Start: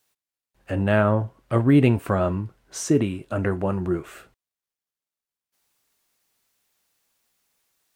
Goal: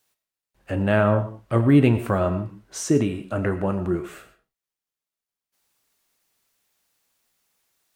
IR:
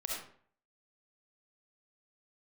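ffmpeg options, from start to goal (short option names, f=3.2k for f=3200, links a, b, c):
-filter_complex "[0:a]asplit=2[a][b];[1:a]atrim=start_sample=2205,afade=t=out:st=0.21:d=0.01,atrim=end_sample=9702,adelay=35[c];[b][c]afir=irnorm=-1:irlink=0,volume=-12.5dB[d];[a][d]amix=inputs=2:normalize=0"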